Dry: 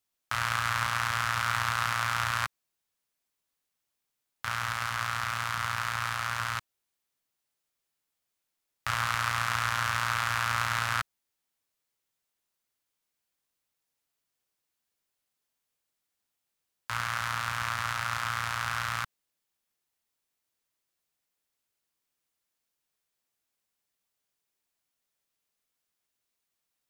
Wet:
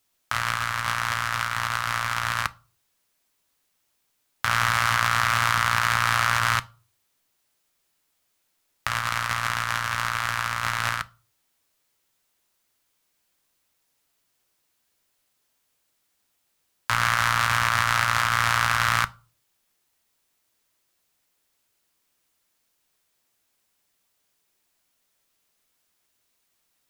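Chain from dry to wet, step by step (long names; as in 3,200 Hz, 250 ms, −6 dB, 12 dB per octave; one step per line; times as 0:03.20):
compressor whose output falls as the input rises −33 dBFS, ratio −0.5
on a send: convolution reverb RT60 0.35 s, pre-delay 3 ms, DRR 14.5 dB
on the sum: level +8.5 dB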